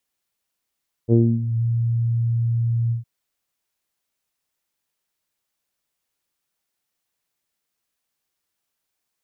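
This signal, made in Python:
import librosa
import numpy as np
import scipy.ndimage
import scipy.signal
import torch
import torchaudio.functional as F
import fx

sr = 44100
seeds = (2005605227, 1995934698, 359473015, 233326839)

y = fx.sub_voice(sr, note=46, wave='saw', cutoff_hz=120.0, q=2.2, env_oct=2.0, env_s=0.51, attack_ms=46.0, decay_s=0.26, sustain_db=-11.0, release_s=0.13, note_s=1.83, slope=24)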